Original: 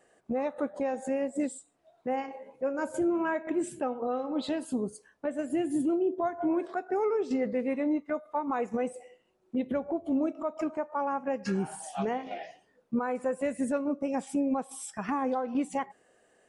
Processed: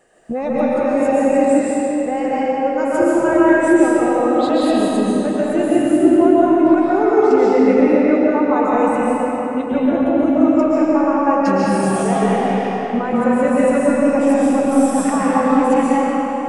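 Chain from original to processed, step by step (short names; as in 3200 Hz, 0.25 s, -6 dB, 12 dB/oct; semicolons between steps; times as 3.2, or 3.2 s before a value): low shelf 63 Hz +8 dB; digital reverb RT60 4.2 s, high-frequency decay 0.75×, pre-delay 95 ms, DRR -8.5 dB; gain +7 dB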